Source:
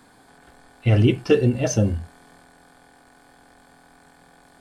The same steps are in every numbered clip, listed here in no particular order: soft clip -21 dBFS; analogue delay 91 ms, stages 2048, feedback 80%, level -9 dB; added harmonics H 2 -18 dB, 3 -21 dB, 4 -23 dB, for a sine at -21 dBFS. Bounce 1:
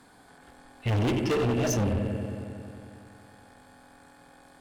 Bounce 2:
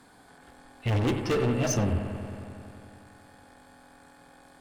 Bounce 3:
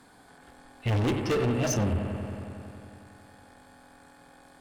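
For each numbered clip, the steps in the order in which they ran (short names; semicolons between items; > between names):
analogue delay > added harmonics > soft clip; added harmonics > soft clip > analogue delay; added harmonics > analogue delay > soft clip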